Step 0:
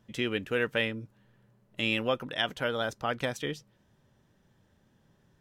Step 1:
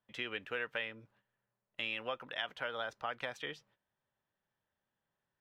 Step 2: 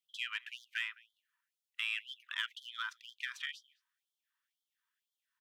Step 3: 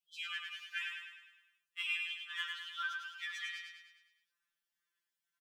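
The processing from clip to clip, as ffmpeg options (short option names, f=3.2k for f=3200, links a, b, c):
-filter_complex "[0:a]agate=range=-12dB:threshold=-58dB:ratio=16:detection=peak,acrossover=split=570 3900:gain=0.2 1 0.2[a][b][c];[a][b][c]amix=inputs=3:normalize=0,acompressor=threshold=-33dB:ratio=3,volume=-2dB"
-filter_complex "[0:a]asplit=2[a][b];[b]adelay=209.9,volume=-24dB,highshelf=f=4k:g=-4.72[c];[a][c]amix=inputs=2:normalize=0,asplit=2[d][e];[e]asoftclip=type=hard:threshold=-33dB,volume=-4dB[f];[d][f]amix=inputs=2:normalize=0,afftfilt=real='re*gte(b*sr/1024,890*pow(3100/890,0.5+0.5*sin(2*PI*2*pts/sr)))':imag='im*gte(b*sr/1024,890*pow(3100/890,0.5+0.5*sin(2*PI*2*pts/sr)))':win_size=1024:overlap=0.75,volume=-1dB"
-filter_complex "[0:a]asplit=2[a][b];[b]aecho=0:1:103|206|309|412|515|618|721:0.631|0.334|0.177|0.0939|0.0498|0.0264|0.014[c];[a][c]amix=inputs=2:normalize=0,afftfilt=real='re*2.83*eq(mod(b,8),0)':imag='im*2.83*eq(mod(b,8),0)':win_size=2048:overlap=0.75"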